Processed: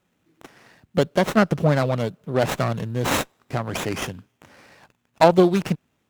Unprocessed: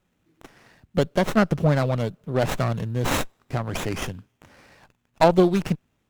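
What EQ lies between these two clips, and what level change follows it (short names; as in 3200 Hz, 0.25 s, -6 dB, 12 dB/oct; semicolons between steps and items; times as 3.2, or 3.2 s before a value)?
HPF 130 Hz 6 dB/oct; +2.5 dB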